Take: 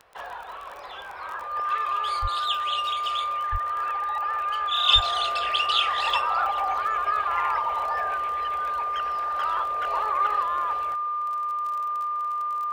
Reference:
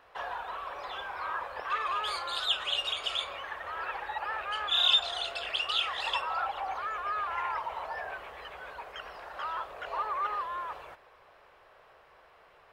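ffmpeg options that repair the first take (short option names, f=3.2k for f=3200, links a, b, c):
-filter_complex "[0:a]adeclick=t=4,bandreject=f=1.2k:w=30,asplit=3[a][b][c];[a]afade=t=out:st=2.21:d=0.02[d];[b]highpass=f=140:w=0.5412,highpass=f=140:w=1.3066,afade=t=in:st=2.21:d=0.02,afade=t=out:st=2.33:d=0.02[e];[c]afade=t=in:st=2.33:d=0.02[f];[d][e][f]amix=inputs=3:normalize=0,asplit=3[g][h][i];[g]afade=t=out:st=3.51:d=0.02[j];[h]highpass=f=140:w=0.5412,highpass=f=140:w=1.3066,afade=t=in:st=3.51:d=0.02,afade=t=out:st=3.63:d=0.02[k];[i]afade=t=in:st=3.63:d=0.02[l];[j][k][l]amix=inputs=3:normalize=0,asplit=3[m][n][o];[m]afade=t=out:st=4.94:d=0.02[p];[n]highpass=f=140:w=0.5412,highpass=f=140:w=1.3066,afade=t=in:st=4.94:d=0.02,afade=t=out:st=5.06:d=0.02[q];[o]afade=t=in:st=5.06:d=0.02[r];[p][q][r]amix=inputs=3:normalize=0,asetnsamples=n=441:p=0,asendcmd='4.88 volume volume -6dB',volume=0dB"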